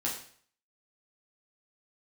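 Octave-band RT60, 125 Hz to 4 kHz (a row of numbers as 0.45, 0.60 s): 0.60, 0.50, 0.50, 0.55, 0.55, 0.50 s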